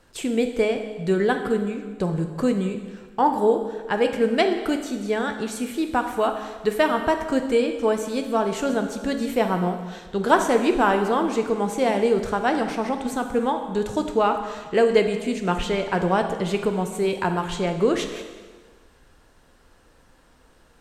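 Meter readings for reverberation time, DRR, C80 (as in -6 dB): 1.5 s, 5.5 dB, 9.5 dB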